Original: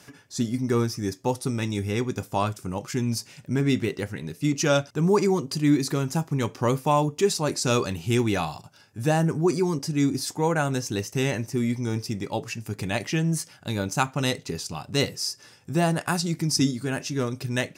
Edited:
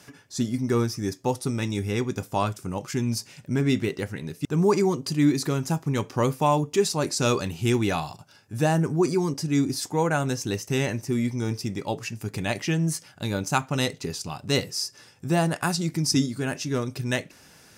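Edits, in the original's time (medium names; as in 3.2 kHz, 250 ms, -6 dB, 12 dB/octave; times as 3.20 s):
4.45–4.90 s: delete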